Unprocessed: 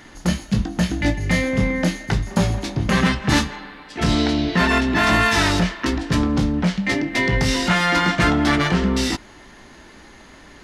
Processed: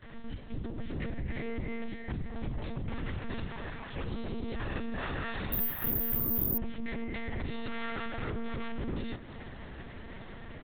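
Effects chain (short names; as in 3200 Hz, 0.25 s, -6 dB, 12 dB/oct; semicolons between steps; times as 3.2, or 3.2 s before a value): gate with hold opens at -37 dBFS; low shelf 430 Hz +7 dB; compressor 3:1, threshold -26 dBFS, peak gain reduction 13.5 dB; limiter -22 dBFS, peak gain reduction 9.5 dB; AGC gain up to 4 dB; overloaded stage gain 24 dB; frequency-shifting echo 0.25 s, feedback 31%, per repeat +54 Hz, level -16.5 dB; monotone LPC vocoder at 8 kHz 230 Hz; 5.52–6.58 careless resampling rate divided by 3×, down none, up zero stuff; gain -7.5 dB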